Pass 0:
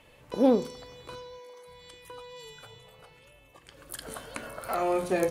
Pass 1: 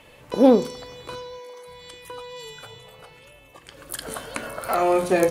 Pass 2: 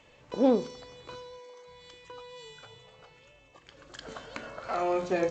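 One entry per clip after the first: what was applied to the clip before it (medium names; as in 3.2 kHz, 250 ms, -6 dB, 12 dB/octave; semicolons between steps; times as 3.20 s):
bass shelf 110 Hz -4 dB; trim +7.5 dB
trim -8.5 dB; G.722 64 kbps 16 kHz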